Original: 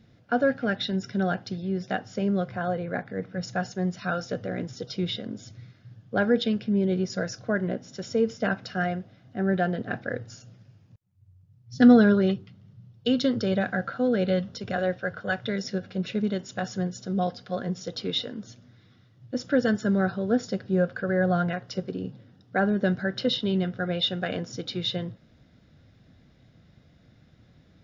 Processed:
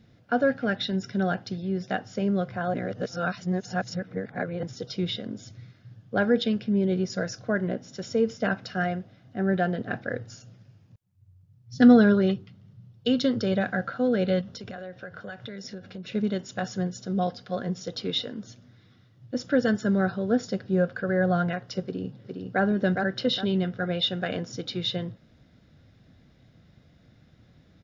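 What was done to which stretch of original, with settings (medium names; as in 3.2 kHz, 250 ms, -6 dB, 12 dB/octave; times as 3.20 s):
2.74–4.63 s: reverse
14.41–16.12 s: compression, threshold -35 dBFS
21.83–22.62 s: echo throw 410 ms, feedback 35%, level -4 dB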